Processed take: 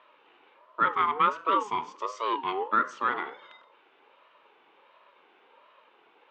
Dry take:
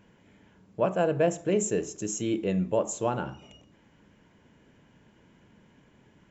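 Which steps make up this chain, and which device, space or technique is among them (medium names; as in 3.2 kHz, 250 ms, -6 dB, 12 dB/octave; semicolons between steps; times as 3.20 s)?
voice changer toy (ring modulator with a swept carrier 690 Hz, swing 20%, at 1.4 Hz; cabinet simulation 500–3700 Hz, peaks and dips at 720 Hz -10 dB, 1.3 kHz +3 dB, 2.9 kHz +5 dB); trim +5 dB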